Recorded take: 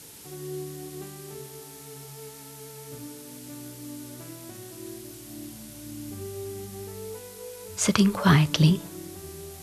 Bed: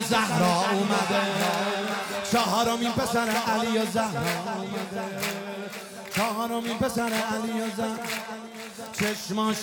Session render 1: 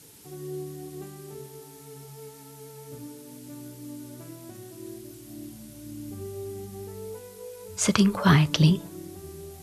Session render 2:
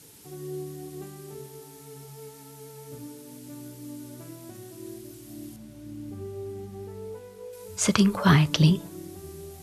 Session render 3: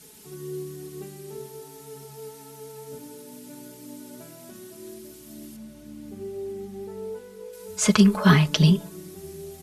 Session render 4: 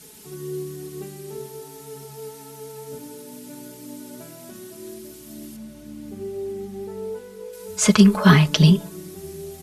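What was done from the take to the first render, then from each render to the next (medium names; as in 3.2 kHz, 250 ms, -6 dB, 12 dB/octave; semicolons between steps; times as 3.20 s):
noise reduction 6 dB, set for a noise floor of -45 dBFS
5.56–7.53 s: treble shelf 4.3 kHz -11.5 dB
hum notches 60/120 Hz; comb 4.7 ms, depth 75%
trim +3.5 dB; peak limiter -2 dBFS, peak gain reduction 2.5 dB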